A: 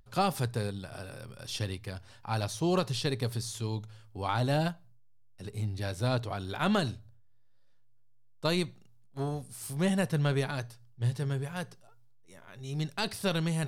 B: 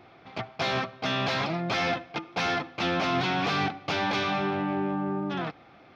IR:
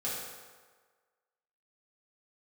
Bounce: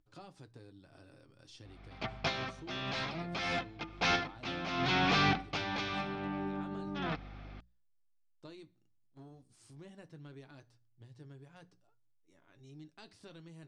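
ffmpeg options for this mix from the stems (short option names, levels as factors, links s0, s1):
-filter_complex "[0:a]equalizer=f=310:t=o:w=0.3:g=14,acompressor=threshold=0.0126:ratio=2.5,flanger=delay=7:depth=1.5:regen=-60:speed=0.17:shape=sinusoidal,volume=0.282,asplit=2[s0][s1];[1:a]equalizer=f=610:w=0.55:g=-4,aeval=exprs='val(0)+0.00398*(sin(2*PI*50*n/s)+sin(2*PI*2*50*n/s)/2+sin(2*PI*3*50*n/s)/3+sin(2*PI*4*50*n/s)/4+sin(2*PI*5*50*n/s)/5)':c=same,adelay=1650,volume=1.12[s2];[s1]apad=whole_len=335344[s3];[s2][s3]sidechaincompress=threshold=0.001:ratio=5:attack=41:release=369[s4];[s0][s4]amix=inputs=2:normalize=0,lowpass=f=7800:w=0.5412,lowpass=f=7800:w=1.3066,bandreject=f=60:t=h:w=6,bandreject=f=120:t=h:w=6,bandreject=f=180:t=h:w=6"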